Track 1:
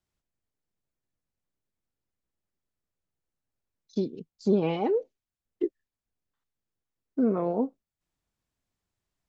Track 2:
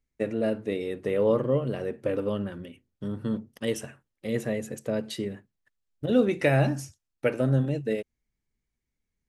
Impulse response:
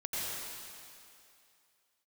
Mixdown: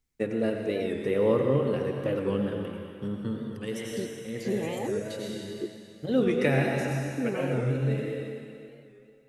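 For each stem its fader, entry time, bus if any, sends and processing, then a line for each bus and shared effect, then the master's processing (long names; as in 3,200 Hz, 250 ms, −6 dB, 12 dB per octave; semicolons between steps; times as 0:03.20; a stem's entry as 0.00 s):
−7.0 dB, 0.00 s, no send, high-shelf EQ 4,200 Hz +11.5 dB
−3.0 dB, 0.00 s, send −4 dB, automatic ducking −17 dB, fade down 0.85 s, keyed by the first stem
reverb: on, RT60 2.5 s, pre-delay 82 ms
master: parametric band 620 Hz −8 dB 0.2 octaves; wow of a warped record 45 rpm, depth 100 cents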